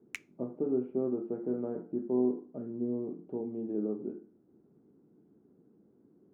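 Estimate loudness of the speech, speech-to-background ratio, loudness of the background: −34.5 LKFS, 11.5 dB, −46.0 LKFS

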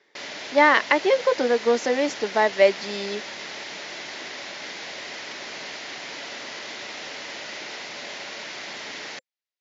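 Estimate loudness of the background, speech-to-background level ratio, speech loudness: −34.0 LKFS, 13.0 dB, −21.0 LKFS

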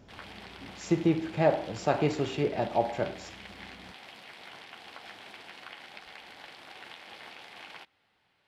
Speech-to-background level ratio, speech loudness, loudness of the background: 17.5 dB, −29.0 LKFS, −46.5 LKFS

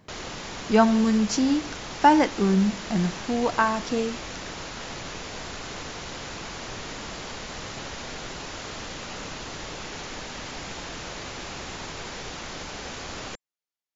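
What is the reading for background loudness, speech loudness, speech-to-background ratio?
−35.5 LKFS, −23.0 LKFS, 12.5 dB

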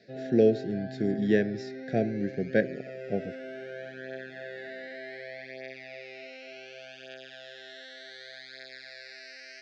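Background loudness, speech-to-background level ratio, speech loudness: −41.5 LKFS, 13.0 dB, −28.5 LKFS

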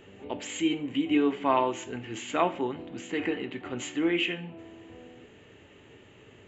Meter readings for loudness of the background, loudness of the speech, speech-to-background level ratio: −48.0 LKFS, −29.5 LKFS, 18.5 dB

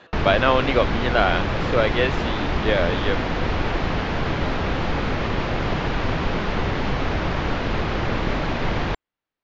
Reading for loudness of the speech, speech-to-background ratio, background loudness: −23.0 LKFS, 1.5 dB, −24.5 LKFS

